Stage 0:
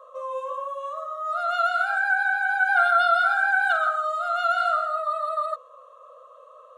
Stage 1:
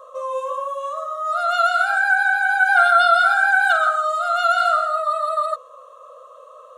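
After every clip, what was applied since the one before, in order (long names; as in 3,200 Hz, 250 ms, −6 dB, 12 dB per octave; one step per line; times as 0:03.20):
bass and treble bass +11 dB, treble +7 dB
level +5 dB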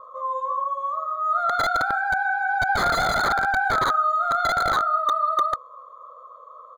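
comb filter 0.9 ms, depth 64%
wrap-around overflow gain 10 dB
moving average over 16 samples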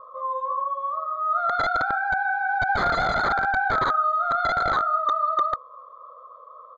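high-frequency loss of the air 170 metres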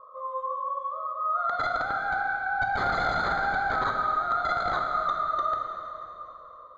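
convolution reverb RT60 3.2 s, pre-delay 14 ms, DRR 2 dB
level −6 dB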